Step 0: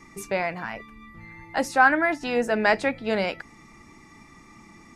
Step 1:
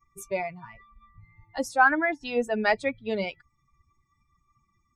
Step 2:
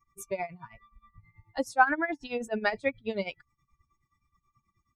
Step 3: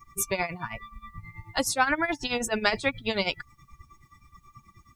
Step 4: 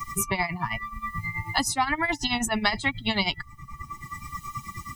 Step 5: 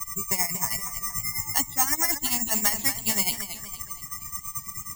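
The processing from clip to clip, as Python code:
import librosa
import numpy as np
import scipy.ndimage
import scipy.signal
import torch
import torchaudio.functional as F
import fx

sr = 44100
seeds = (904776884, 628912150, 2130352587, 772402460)

y1 = fx.bin_expand(x, sr, power=2.0)
y2 = y1 * (1.0 - 0.83 / 2.0 + 0.83 / 2.0 * np.cos(2.0 * np.pi * 9.4 * (np.arange(len(y1)) / sr)))
y3 = fx.spectral_comp(y2, sr, ratio=2.0)
y4 = y3 + 1.0 * np.pad(y3, (int(1.0 * sr / 1000.0), 0))[:len(y3)]
y4 = fx.band_squash(y4, sr, depth_pct=70)
y5 = (np.kron(scipy.signal.resample_poly(y4, 1, 6), np.eye(6)[0]) * 6)[:len(y4)]
y5 = fx.echo_warbled(y5, sr, ms=233, feedback_pct=45, rate_hz=2.8, cents=97, wet_db=-10.0)
y5 = y5 * librosa.db_to_amplitude(-6.5)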